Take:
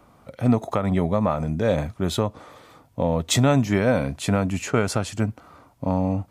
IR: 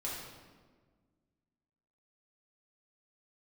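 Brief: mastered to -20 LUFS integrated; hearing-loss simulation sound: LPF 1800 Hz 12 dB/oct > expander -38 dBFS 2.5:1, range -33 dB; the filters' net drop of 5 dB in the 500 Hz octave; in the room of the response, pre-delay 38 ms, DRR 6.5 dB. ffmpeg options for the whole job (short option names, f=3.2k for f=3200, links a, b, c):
-filter_complex "[0:a]equalizer=f=500:t=o:g=-6,asplit=2[a][b];[1:a]atrim=start_sample=2205,adelay=38[c];[b][c]afir=irnorm=-1:irlink=0,volume=-8.5dB[d];[a][d]amix=inputs=2:normalize=0,lowpass=1.8k,agate=range=-33dB:threshold=-38dB:ratio=2.5,volume=4dB"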